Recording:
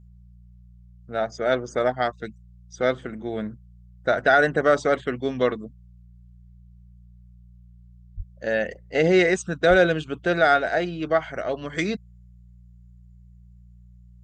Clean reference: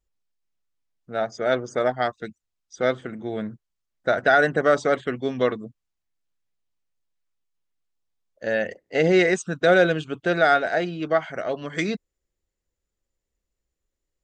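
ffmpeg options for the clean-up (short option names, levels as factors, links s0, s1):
-filter_complex "[0:a]bandreject=f=59.4:t=h:w=4,bandreject=f=118.8:t=h:w=4,bandreject=f=178.2:t=h:w=4,asplit=3[s0][s1][s2];[s0]afade=t=out:st=8.16:d=0.02[s3];[s1]highpass=f=140:w=0.5412,highpass=f=140:w=1.3066,afade=t=in:st=8.16:d=0.02,afade=t=out:st=8.28:d=0.02[s4];[s2]afade=t=in:st=8.28:d=0.02[s5];[s3][s4][s5]amix=inputs=3:normalize=0,asplit=3[s6][s7][s8];[s6]afade=t=out:st=9.69:d=0.02[s9];[s7]highpass=f=140:w=0.5412,highpass=f=140:w=1.3066,afade=t=in:st=9.69:d=0.02,afade=t=out:st=9.81:d=0.02[s10];[s8]afade=t=in:st=9.81:d=0.02[s11];[s9][s10][s11]amix=inputs=3:normalize=0"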